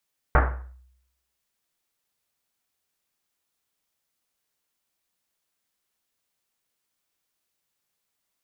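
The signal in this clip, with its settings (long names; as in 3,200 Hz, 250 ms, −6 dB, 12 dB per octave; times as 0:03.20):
drum after Risset, pitch 63 Hz, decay 0.80 s, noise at 1,000 Hz, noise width 1,400 Hz, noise 40%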